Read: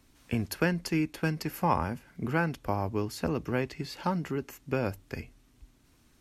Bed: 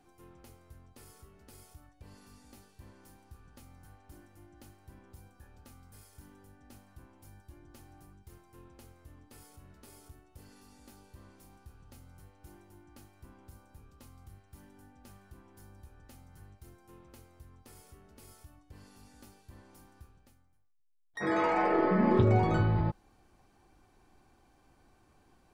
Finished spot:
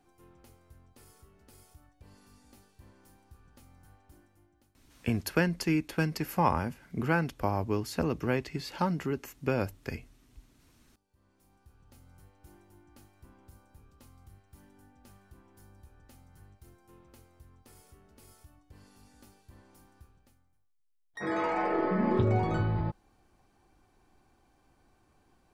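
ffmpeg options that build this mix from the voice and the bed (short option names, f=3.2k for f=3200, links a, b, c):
-filter_complex "[0:a]adelay=4750,volume=0.5dB[a];[1:a]volume=17dB,afade=t=out:st=3.96:d=0.81:silence=0.112202,afade=t=in:st=11.07:d=1.07:silence=0.105925[b];[a][b]amix=inputs=2:normalize=0"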